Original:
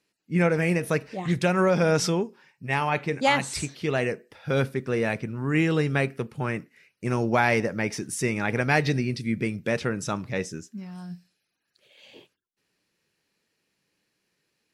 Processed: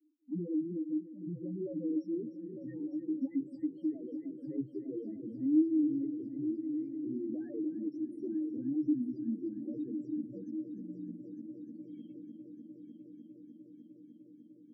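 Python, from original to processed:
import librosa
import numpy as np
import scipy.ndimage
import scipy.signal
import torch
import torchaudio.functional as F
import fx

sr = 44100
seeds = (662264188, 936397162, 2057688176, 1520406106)

p1 = scipy.signal.sosfilt(scipy.signal.butter(4, 79.0, 'highpass', fs=sr, output='sos'), x)
p2 = fx.peak_eq(p1, sr, hz=310.0, db=13.5, octaves=0.25)
p3 = fx.spec_topn(p2, sr, count=2)
p4 = fx.vowel_filter(p3, sr, vowel='i')
p5 = fx.rotary_switch(p4, sr, hz=7.0, then_hz=0.7, switch_at_s=6.06)
p6 = fx.graphic_eq(p5, sr, hz=(125, 500, 2000), db=(5, 5, -12))
p7 = p6 + fx.echo_heads(p6, sr, ms=301, heads='first and third', feedback_pct=68, wet_db=-14, dry=0)
y = fx.band_squash(p7, sr, depth_pct=40)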